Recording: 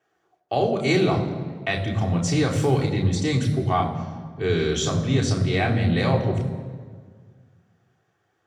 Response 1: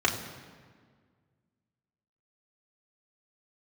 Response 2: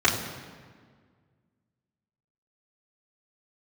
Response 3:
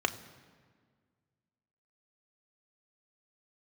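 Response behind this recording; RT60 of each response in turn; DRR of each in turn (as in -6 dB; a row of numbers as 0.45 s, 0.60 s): 1; 1.7 s, 1.7 s, 1.7 s; -2.0 dB, -7.5 dB, 7.0 dB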